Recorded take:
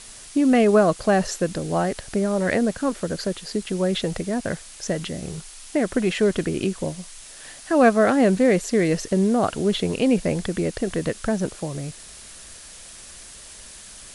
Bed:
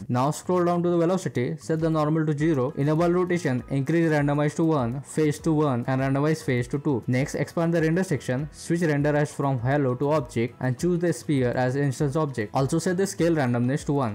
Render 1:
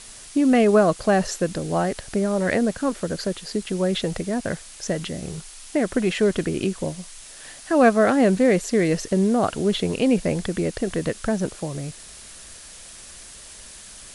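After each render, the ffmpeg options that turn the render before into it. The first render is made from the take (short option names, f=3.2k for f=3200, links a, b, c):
-af anull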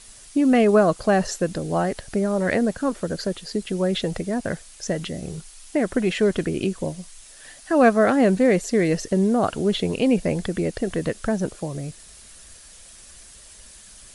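-af "afftdn=nr=6:nf=-43"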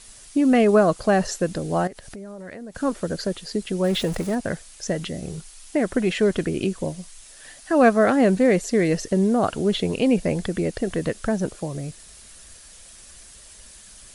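-filter_complex "[0:a]asettb=1/sr,asplit=3[a][b][c];[a]atrim=end=1.874[d];[b]atrim=start=1.87:end=2.75,asetpts=PTS-STARTPTS,afade=t=in:d=0.004:c=qsin,afade=t=out:st=0.876:d=0.004:c=qsin,acompressor=threshold=-37dB:ratio=4:attack=3.2:release=140:knee=1:detection=peak[e];[c]atrim=start=2.746[f];[d][e]acrossfade=d=0.004:c1=hsin:c2=qsin[g];[g][f]acrossfade=d=0.004:c1=qsin:c2=hsin,asettb=1/sr,asplit=3[h][i][j];[h]atrim=end=3.844[k];[i]atrim=start=3.84:end=4.35,asetpts=PTS-STARTPTS,afade=t=in:d=0.004:c=qsin,afade=t=out:st=0.506:d=0.004:c=qsin,aeval=exprs='val(0)+0.5*0.0251*sgn(val(0))':c=same[l];[j]atrim=start=4.346[m];[k][l]acrossfade=d=0.004:c1=hsin:c2=qsin[n];[n][m]acrossfade=d=0.004:c1=qsin:c2=hsin"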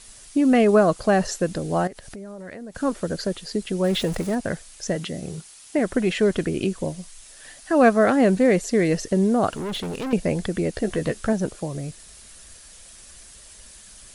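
-filter_complex "[0:a]asettb=1/sr,asplit=3[a][b][c];[a]atrim=end=4.964[d];[b]atrim=start=4.96:end=5.79,asetpts=PTS-STARTPTS,afade=t=in:d=0.004:c=qsin,afade=t=out:st=0.826:d=0.004:c=qsin,highpass=87[e];[c]atrim=start=5.786[f];[d][e]acrossfade=d=0.004:c1=hsin:c2=qsin[g];[g][f]acrossfade=d=0.004:c1=qsin:c2=hsin,asettb=1/sr,asplit=3[h][i][j];[h]atrim=end=9.514[k];[i]atrim=start=9.51:end=10.13,asetpts=PTS-STARTPTS,afade=t=in:d=0.004:c=qsin,afade=t=out:st=0.616:d=0.004:c=qsin,asoftclip=type=hard:threshold=-26.5dB[l];[j]atrim=start=10.126[m];[k][l]acrossfade=d=0.004:c1=hsin:c2=qsin[n];[n][m]acrossfade=d=0.004:c1=qsin:c2=hsin,asettb=1/sr,asplit=3[o][p][q];[o]atrim=end=10.744[r];[p]atrim=start=10.74:end=11.33,asetpts=PTS-STARTPTS,afade=t=in:d=0.004:c=qsin,afade=t=out:st=0.586:d=0.004:c=qsin,asplit=2[s][t];[t]adelay=14,volume=-7.5dB[u];[s][u]amix=inputs=2:normalize=0,atrim=end_sample=26019[v];[q]atrim=start=11.326[w];[r][v]acrossfade=d=0.004:c1=hsin:c2=qsin[x];[x][w]acrossfade=d=0.004:c1=qsin:c2=hsin"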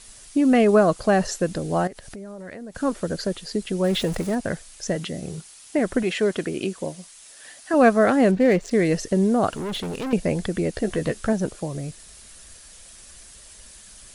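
-filter_complex "[0:a]asettb=1/sr,asplit=3[a][b][c];[a]atrim=end=6.034[d];[b]atrim=start=6.03:end=7.74,asetpts=PTS-STARTPTS,afade=t=in:d=0.004:c=qsin,afade=t=out:st=1.706:d=0.004:c=qsin,highpass=f=270:p=1[e];[c]atrim=start=7.736[f];[d][e]acrossfade=d=0.004:c1=hsin:c2=qsin[g];[g][f]acrossfade=d=0.004:c1=qsin:c2=hsin,asettb=1/sr,asplit=3[h][i][j];[h]atrim=end=8.314[k];[i]atrim=start=8.31:end=8.71,asetpts=PTS-STARTPTS,afade=t=in:d=0.004:c=qsin,afade=t=out:st=0.396:d=0.004:c=qsin,adynamicsmooth=sensitivity=4.5:basefreq=2.5k[l];[j]atrim=start=8.706[m];[k][l]acrossfade=d=0.004:c1=hsin:c2=qsin[n];[n][m]acrossfade=d=0.004:c1=qsin:c2=hsin"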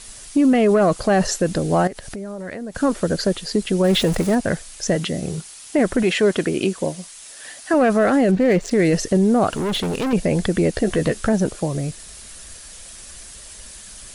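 -af "acontrast=65,alimiter=limit=-9.5dB:level=0:latency=1:release=20"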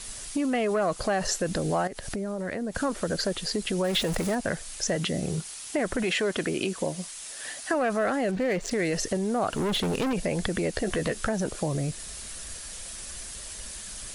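-filter_complex "[0:a]acrossover=split=560|2300[a][b][c];[a]alimiter=limit=-20dB:level=0:latency=1[d];[d][b][c]amix=inputs=3:normalize=0,acompressor=threshold=-27dB:ratio=2"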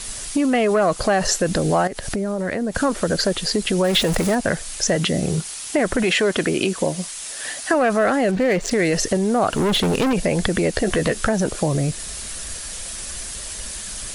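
-af "volume=8dB"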